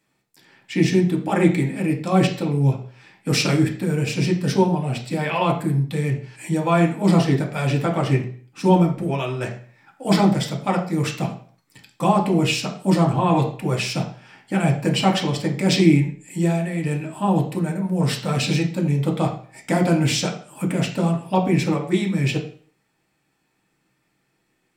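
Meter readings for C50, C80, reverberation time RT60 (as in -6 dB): 9.5 dB, 13.0 dB, 0.50 s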